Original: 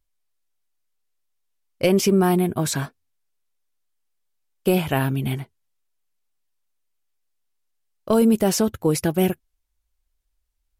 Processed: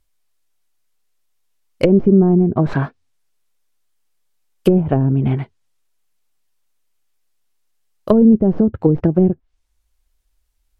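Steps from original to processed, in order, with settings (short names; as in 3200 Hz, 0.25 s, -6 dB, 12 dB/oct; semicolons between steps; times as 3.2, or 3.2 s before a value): tracing distortion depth 0.15 ms; treble ducked by the level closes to 360 Hz, closed at -16.5 dBFS; gain +8 dB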